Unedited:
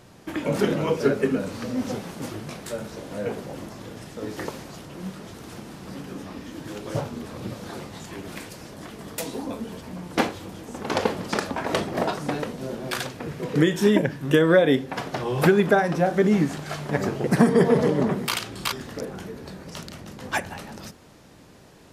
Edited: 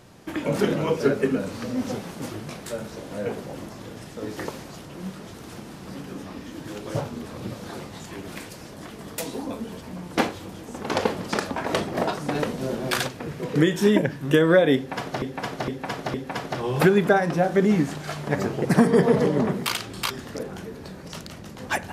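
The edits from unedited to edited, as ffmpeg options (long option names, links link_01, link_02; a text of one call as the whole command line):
ffmpeg -i in.wav -filter_complex "[0:a]asplit=6[link_01][link_02][link_03][link_04][link_05][link_06];[link_01]atrim=end=12.352[link_07];[link_02]atrim=start=12.348:end=13.082,asetpts=PTS-STARTPTS,volume=4dB[link_08];[link_03]atrim=start=13.078:end=15.222[link_09];[link_04]atrim=start=14.758:end=15.222[link_10];[link_05]atrim=start=14.758:end=15.222[link_11];[link_06]atrim=start=14.758[link_12];[link_07][link_08]acrossfade=duration=0.004:curve1=hsin:curve2=hsin[link_13];[link_13][link_09]acrossfade=duration=0.004:curve1=hsin:curve2=hsin[link_14];[link_14][link_10]acrossfade=duration=0.004:curve1=hsin:curve2=hsin[link_15];[link_15][link_11]acrossfade=duration=0.004:curve1=hsin:curve2=hsin[link_16];[link_16][link_12]acrossfade=duration=0.004:curve1=hsin:curve2=hsin" out.wav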